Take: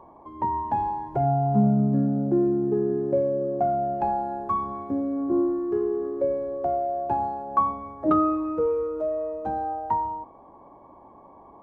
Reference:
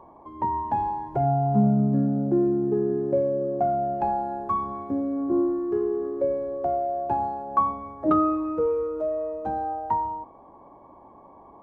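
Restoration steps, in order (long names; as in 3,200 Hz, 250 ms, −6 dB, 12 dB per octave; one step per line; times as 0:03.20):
no processing needed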